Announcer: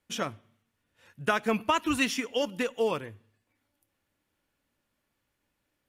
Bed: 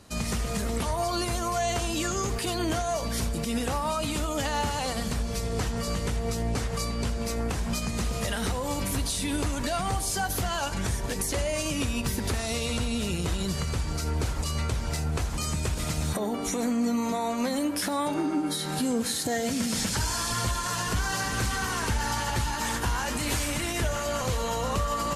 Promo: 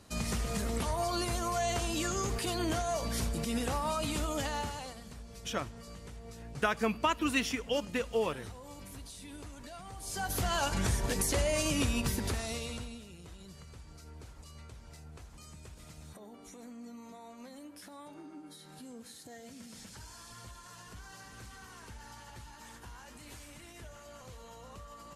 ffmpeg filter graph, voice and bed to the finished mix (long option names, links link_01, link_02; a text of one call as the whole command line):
ffmpeg -i stem1.wav -i stem2.wav -filter_complex "[0:a]adelay=5350,volume=-3.5dB[link_01];[1:a]volume=12.5dB,afade=type=out:start_time=4.31:duration=0.68:silence=0.199526,afade=type=in:start_time=9.96:duration=0.6:silence=0.141254,afade=type=out:start_time=11.83:duration=1.21:silence=0.1[link_02];[link_01][link_02]amix=inputs=2:normalize=0" out.wav